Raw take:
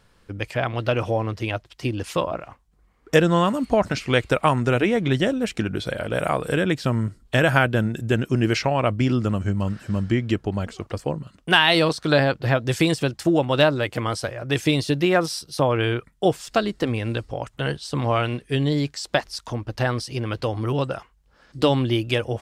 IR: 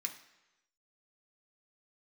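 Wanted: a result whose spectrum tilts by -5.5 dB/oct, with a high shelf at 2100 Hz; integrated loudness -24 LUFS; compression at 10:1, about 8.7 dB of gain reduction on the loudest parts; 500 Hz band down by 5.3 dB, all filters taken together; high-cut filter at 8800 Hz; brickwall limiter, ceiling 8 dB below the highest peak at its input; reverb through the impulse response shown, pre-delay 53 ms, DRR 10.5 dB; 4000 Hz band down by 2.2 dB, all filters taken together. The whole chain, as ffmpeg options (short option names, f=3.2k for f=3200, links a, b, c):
-filter_complex "[0:a]lowpass=8.8k,equalizer=f=500:t=o:g=-7,highshelf=f=2.1k:g=4.5,equalizer=f=4k:t=o:g=-7.5,acompressor=threshold=-22dB:ratio=10,alimiter=limit=-17.5dB:level=0:latency=1,asplit=2[a][b];[1:a]atrim=start_sample=2205,adelay=53[c];[b][c]afir=irnorm=-1:irlink=0,volume=-10dB[d];[a][d]amix=inputs=2:normalize=0,volume=5dB"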